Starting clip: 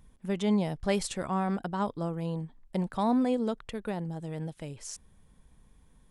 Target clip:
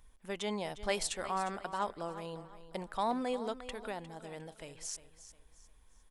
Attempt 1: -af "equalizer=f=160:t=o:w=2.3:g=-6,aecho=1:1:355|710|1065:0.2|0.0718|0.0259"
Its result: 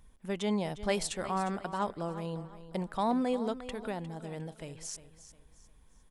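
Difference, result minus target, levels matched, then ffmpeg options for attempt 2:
125 Hz band +6.0 dB
-af "equalizer=f=160:t=o:w=2.3:g=-16,aecho=1:1:355|710|1065:0.2|0.0718|0.0259"

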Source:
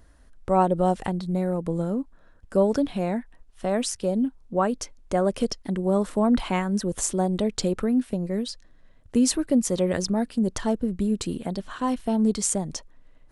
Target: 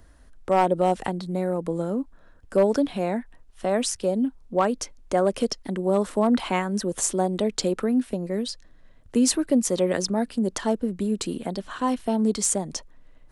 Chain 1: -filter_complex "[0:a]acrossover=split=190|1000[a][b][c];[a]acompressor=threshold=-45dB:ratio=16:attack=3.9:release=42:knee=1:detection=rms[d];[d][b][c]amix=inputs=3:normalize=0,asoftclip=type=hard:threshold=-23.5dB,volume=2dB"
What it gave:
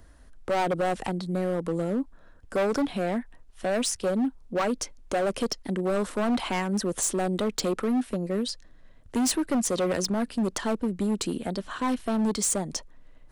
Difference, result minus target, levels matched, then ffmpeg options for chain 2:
hard clip: distortion +15 dB
-filter_complex "[0:a]acrossover=split=190|1000[a][b][c];[a]acompressor=threshold=-45dB:ratio=16:attack=3.9:release=42:knee=1:detection=rms[d];[d][b][c]amix=inputs=3:normalize=0,asoftclip=type=hard:threshold=-13dB,volume=2dB"

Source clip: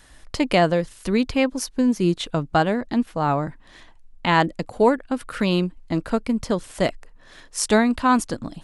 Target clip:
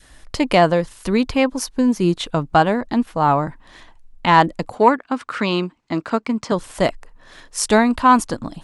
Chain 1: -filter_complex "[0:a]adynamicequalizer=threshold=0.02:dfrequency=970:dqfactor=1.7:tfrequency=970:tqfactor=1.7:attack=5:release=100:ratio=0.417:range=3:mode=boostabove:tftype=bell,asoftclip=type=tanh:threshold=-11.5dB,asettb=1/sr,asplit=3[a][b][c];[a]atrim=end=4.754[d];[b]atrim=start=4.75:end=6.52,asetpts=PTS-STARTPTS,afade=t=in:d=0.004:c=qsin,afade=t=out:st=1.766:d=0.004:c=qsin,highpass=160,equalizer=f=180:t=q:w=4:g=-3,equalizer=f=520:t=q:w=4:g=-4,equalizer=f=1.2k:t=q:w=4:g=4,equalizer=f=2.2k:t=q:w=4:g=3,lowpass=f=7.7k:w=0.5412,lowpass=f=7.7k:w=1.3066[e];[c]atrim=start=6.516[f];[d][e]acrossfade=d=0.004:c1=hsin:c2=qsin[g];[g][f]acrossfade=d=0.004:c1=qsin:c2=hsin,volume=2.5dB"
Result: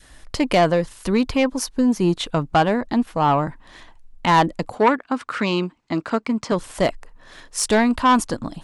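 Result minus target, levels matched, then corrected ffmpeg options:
soft clip: distortion +14 dB
-filter_complex "[0:a]adynamicequalizer=threshold=0.02:dfrequency=970:dqfactor=1.7:tfrequency=970:tqfactor=1.7:attack=5:release=100:ratio=0.417:range=3:mode=boostabove:tftype=bell,asoftclip=type=tanh:threshold=-1.5dB,asettb=1/sr,asplit=3[a][b][c];[a]atrim=end=4.754[d];[b]atrim=start=4.75:end=6.52,asetpts=PTS-STARTPTS,afade=t=in:d=0.004:c=qsin,afade=t=out:st=1.766:d=0.004:c=qsin,highpass=160,equalizer=f=180:t=q:w=4:g=-3,equalizer=f=520:t=q:w=4:g=-4,equalizer=f=1.2k:t=q:w=4:g=4,equalizer=f=2.2k:t=q:w=4:g=3,lowpass=f=7.7k:w=0.5412,lowpass=f=7.7k:w=1.3066[e];[c]atrim=start=6.516[f];[d][e]acrossfade=d=0.004:c1=hsin:c2=qsin[g];[g][f]acrossfade=d=0.004:c1=qsin:c2=hsin,volume=2.5dB"

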